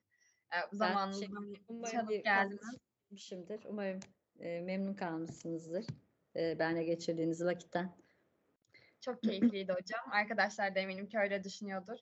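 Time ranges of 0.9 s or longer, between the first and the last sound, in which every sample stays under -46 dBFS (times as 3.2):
7.9–9.03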